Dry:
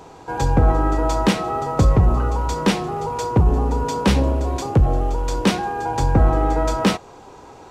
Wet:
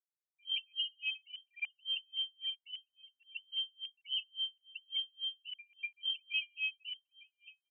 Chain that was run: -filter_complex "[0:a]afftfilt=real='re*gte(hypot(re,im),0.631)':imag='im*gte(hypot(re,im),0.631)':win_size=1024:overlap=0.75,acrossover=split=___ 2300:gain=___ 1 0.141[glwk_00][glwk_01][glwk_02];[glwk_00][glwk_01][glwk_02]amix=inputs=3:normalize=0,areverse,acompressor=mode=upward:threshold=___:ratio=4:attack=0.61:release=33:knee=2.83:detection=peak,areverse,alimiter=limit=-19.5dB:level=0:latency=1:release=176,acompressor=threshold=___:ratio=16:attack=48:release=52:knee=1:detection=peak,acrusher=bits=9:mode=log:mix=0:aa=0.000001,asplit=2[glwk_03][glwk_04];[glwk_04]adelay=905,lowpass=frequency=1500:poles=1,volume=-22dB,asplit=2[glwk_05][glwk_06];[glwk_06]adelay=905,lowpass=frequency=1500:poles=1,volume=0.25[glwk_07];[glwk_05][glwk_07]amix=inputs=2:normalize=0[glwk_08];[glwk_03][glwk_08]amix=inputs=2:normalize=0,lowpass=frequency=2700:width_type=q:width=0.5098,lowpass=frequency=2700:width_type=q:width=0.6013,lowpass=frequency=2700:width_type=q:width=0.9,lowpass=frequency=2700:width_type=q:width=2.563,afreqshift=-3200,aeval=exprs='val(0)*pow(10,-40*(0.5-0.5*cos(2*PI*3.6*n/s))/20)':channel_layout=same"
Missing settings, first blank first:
330, 0.224, -32dB, -33dB